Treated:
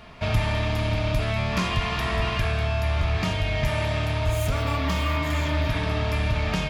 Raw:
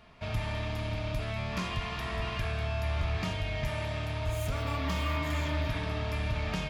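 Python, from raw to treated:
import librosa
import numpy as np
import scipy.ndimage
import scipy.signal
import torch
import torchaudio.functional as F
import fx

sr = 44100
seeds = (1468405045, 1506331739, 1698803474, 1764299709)

y = fx.rider(x, sr, range_db=10, speed_s=0.5)
y = F.gain(torch.from_numpy(y), 8.0).numpy()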